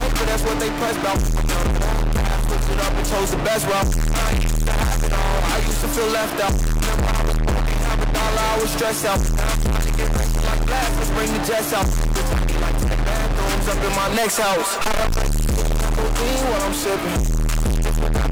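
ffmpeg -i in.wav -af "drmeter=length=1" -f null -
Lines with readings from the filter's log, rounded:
Channel 1: DR: -2.3
Overall DR: -2.3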